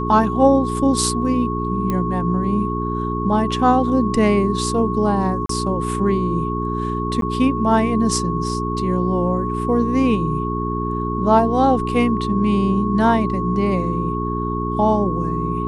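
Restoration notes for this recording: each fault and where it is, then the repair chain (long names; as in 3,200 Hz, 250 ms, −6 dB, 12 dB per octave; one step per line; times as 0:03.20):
mains hum 60 Hz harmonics 7 −24 dBFS
whistle 1,100 Hz −25 dBFS
0:01.90: click −10 dBFS
0:05.46–0:05.49: drop-out 33 ms
0:07.21–0:07.22: drop-out 12 ms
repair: click removal
notch filter 1,100 Hz, Q 30
hum removal 60 Hz, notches 7
repair the gap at 0:05.46, 33 ms
repair the gap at 0:07.21, 12 ms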